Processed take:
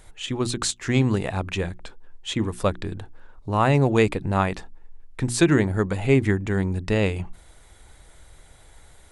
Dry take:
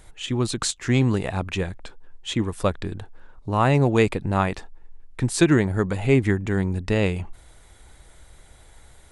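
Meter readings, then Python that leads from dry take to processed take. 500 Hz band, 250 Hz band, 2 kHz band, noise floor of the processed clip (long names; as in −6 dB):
0.0 dB, −0.5 dB, 0.0 dB, −51 dBFS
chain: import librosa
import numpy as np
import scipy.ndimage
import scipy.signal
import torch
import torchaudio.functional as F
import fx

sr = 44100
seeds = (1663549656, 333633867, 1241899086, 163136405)

y = fx.hum_notches(x, sr, base_hz=60, count=6)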